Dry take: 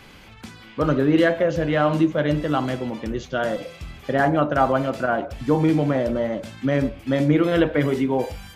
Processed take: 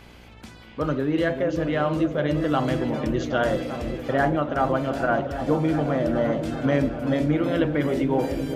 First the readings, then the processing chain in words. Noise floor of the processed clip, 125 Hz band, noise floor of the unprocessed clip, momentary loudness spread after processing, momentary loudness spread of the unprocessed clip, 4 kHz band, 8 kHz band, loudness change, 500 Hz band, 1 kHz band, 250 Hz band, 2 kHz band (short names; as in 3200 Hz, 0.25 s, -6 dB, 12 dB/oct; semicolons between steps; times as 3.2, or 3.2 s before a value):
-46 dBFS, -2.0 dB, -45 dBFS, 3 LU, 9 LU, -2.5 dB, n/a, -2.5 dB, -2.0 dB, -2.0 dB, -2.0 dB, -2.5 dB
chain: vocal rider within 4 dB 0.5 s; repeats that get brighter 0.388 s, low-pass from 400 Hz, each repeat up 1 oct, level -6 dB; buzz 60 Hz, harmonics 16, -48 dBFS -4 dB/oct; gain -3 dB